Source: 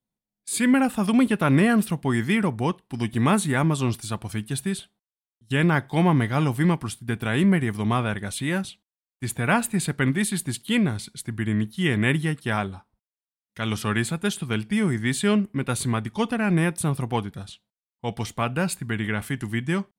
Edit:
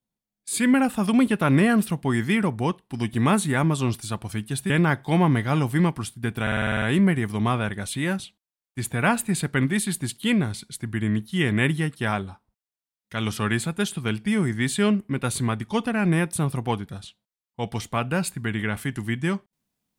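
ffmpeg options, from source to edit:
-filter_complex "[0:a]asplit=10[s0][s1][s2][s3][s4][s5][s6][s7][s8][s9];[s0]atrim=end=4.702[s10];[s1]atrim=start=5.548:end=7.322[s11];[s2]atrim=start=7.268:end=7.322[s12];[s3]atrim=start=7.268:end=7.322[s13];[s4]atrim=start=7.268:end=7.322[s14];[s5]atrim=start=7.268:end=7.322[s15];[s6]atrim=start=7.268:end=7.322[s16];[s7]atrim=start=7.268:end=7.322[s17];[s8]atrim=start=7.268:end=7.322[s18];[s9]atrim=start=7.268[s19];[s10][s11]acrossfade=d=0.004:c1=hsin:c2=hsin[s20];[s20][s12]acrossfade=d=0.004:c1=hsin:c2=hsin[s21];[s21][s13]acrossfade=d=0.004:c1=hsin:c2=hsin[s22];[s22][s14]acrossfade=d=0.004:c1=hsin:c2=hsin[s23];[s23][s15]acrossfade=d=0.004:c1=hsin:c2=hsin[s24];[s24][s16]acrossfade=d=0.004:c1=hsin:c2=hsin[s25];[s25][s17]acrossfade=d=0.004:c1=hsin:c2=hsin[s26];[s26][s18]acrossfade=d=0.004:c1=hsin:c2=hsin[s27];[s27][s19]acrossfade=d=0.004:c1=hsin:c2=hsin"

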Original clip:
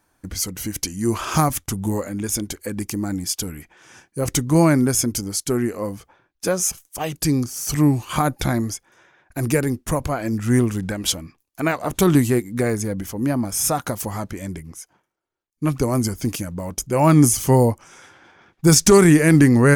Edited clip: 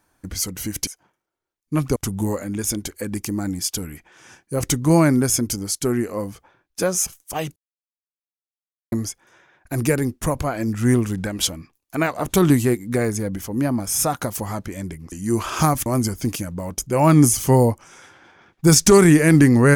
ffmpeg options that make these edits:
-filter_complex "[0:a]asplit=7[s0][s1][s2][s3][s4][s5][s6];[s0]atrim=end=0.872[s7];[s1]atrim=start=14.768:end=15.862[s8];[s2]atrim=start=1.608:end=7.21,asetpts=PTS-STARTPTS,afade=t=out:st=5.598:d=0.004:c=hsin[s9];[s3]atrim=start=7.21:end=8.57,asetpts=PTS-STARTPTS,volume=0[s10];[s4]atrim=start=8.57:end=14.772,asetpts=PTS-STARTPTS,afade=t=in:d=0.004:c=hsin[s11];[s5]atrim=start=0.868:end=1.612[s12];[s6]atrim=start=15.858[s13];[s7][s8]acrossfade=d=0.004:c1=hsin:c2=hsin[s14];[s9][s10][s11]concat=n=3:v=0:a=1[s15];[s14][s15]acrossfade=d=0.004:c1=hsin:c2=hsin[s16];[s16][s12]acrossfade=d=0.004:c1=hsin:c2=hsin[s17];[s17][s13]acrossfade=d=0.004:c1=hsin:c2=hsin"

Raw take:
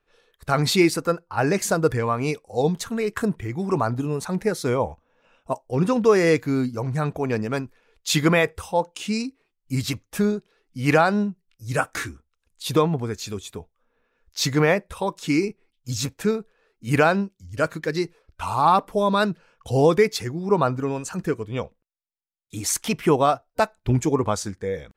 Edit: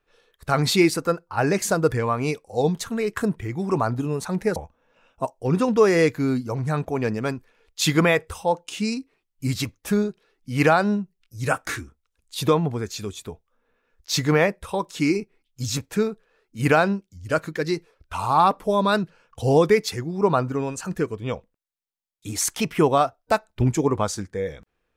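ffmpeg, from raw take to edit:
-filter_complex "[0:a]asplit=2[s0][s1];[s0]atrim=end=4.562[s2];[s1]atrim=start=4.838[s3];[s2][s3]acrossfade=d=0.004:c1=hsin:c2=hsin"

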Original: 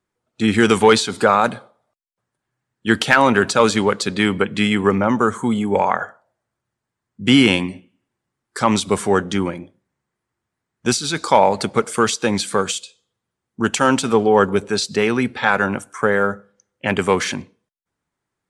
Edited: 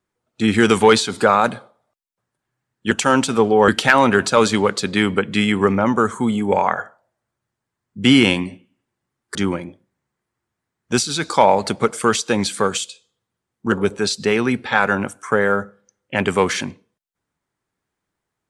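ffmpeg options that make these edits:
-filter_complex "[0:a]asplit=5[s0][s1][s2][s3][s4];[s0]atrim=end=2.912[s5];[s1]atrim=start=13.658:end=14.432[s6];[s2]atrim=start=2.908:end=8.582[s7];[s3]atrim=start=9.288:end=13.662[s8];[s4]atrim=start=14.428[s9];[s5][s6]acrossfade=d=0.004:c1=hsin:c2=hsin[s10];[s10][s7]acrossfade=d=0.004:c1=hsin:c2=hsin[s11];[s11][s8]acrossfade=d=0.004:c1=hsin:c2=hsin[s12];[s12][s9]acrossfade=d=0.004:c1=hsin:c2=hsin"

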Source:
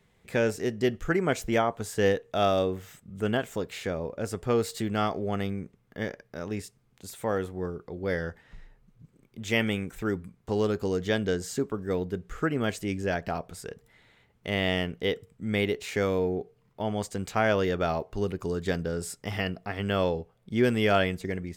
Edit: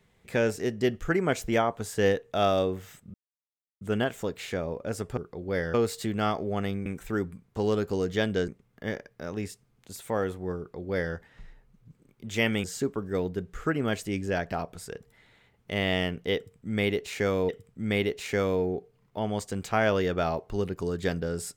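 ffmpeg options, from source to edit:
-filter_complex "[0:a]asplit=8[s0][s1][s2][s3][s4][s5][s6][s7];[s0]atrim=end=3.14,asetpts=PTS-STARTPTS,afade=t=out:st=3.136:d=0.004:c=hsin,apad=pad_dur=0.67[s8];[s1]atrim=start=3.14:end=4.502,asetpts=PTS-STARTPTS,afade=t=in:d=0.004:c=hsin[s9];[s2]atrim=start=7.718:end=8.292[s10];[s3]atrim=start=4.498:end=5.622[s11];[s4]atrim=start=9.778:end=11.402[s12];[s5]atrim=start=5.618:end=9.782[s13];[s6]atrim=start=11.398:end=16.252[s14];[s7]atrim=start=15.118[s15];[s8][s9]concat=n=2:v=0:a=1[s16];[s16][s10]acrossfade=d=0.004:c1=hsin:c2=hsin[s17];[s17][s11]acrossfade=d=0.004:c1=hsin:c2=hsin[s18];[s18][s12]acrossfade=d=0.004:c1=hsin:c2=hsin[s19];[s19][s13]acrossfade=d=0.004:c1=hsin:c2=hsin[s20];[s20][s14]acrossfade=d=0.004:c1=hsin:c2=hsin[s21];[s21][s15]acrossfade=d=0.004:c1=hsin:c2=hsin"

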